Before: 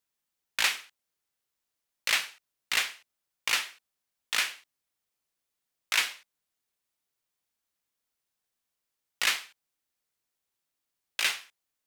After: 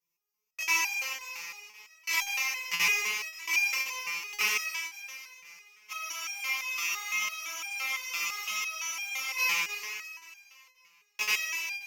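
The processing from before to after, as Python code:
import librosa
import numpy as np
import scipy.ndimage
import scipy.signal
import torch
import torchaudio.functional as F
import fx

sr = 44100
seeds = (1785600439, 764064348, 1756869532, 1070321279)

y = fx.spec_trails(x, sr, decay_s=2.43)
y = fx.ripple_eq(y, sr, per_octave=0.79, db=15)
y = fx.buffer_crackle(y, sr, first_s=0.63, period_s=0.53, block=2048, kind='zero')
y = fx.spec_freeze(y, sr, seeds[0], at_s=5.93, hold_s=3.45)
y = fx.resonator_held(y, sr, hz=5.9, low_hz=170.0, high_hz=800.0)
y = F.gain(torch.from_numpy(y), 6.5).numpy()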